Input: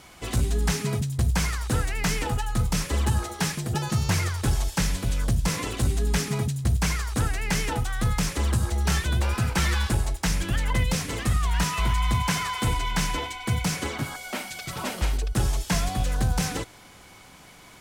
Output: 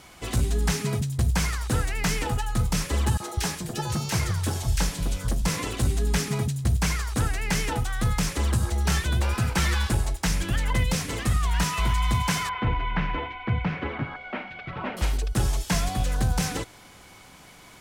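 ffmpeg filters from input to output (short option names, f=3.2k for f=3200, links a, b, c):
-filter_complex "[0:a]asettb=1/sr,asplit=3[a][b][c];[a]atrim=end=3.174[d];[b]atrim=start=3.17:end=5.42,asetpts=PTS-STARTPTS,afade=t=in:d=0.004:c=qsin,afade=t=out:st=2.246:d=0.004:c=qsin,acrossover=split=160|1800[e][f][g];[f]adelay=30[h];[e]adelay=200[i];[i][h][g]amix=inputs=3:normalize=0,atrim=end_sample=99225[j];[c]atrim=start=5.416[k];[d][j]acrossfade=d=0.004:c1=hsin:c2=qsin[l];[l][k]acrossfade=d=0.004:c1=qsin:c2=hsin,asettb=1/sr,asplit=3[m][n][o];[m]atrim=end=12.494[p];[n]atrim=start=12.49:end=14.97,asetpts=PTS-STARTPTS,afade=t=in:d=0.004:c=qsin,afade=t=out:st=2.476:d=0.004:c=qsin,lowpass=f=2.6k:w=0.5412,lowpass=f=2.6k:w=1.3066[q];[o]atrim=start=14.966[r];[p][q]acrossfade=d=0.004:c1=hsin:c2=qsin[s];[s][r]acrossfade=d=0.004:c1=qsin:c2=hsin"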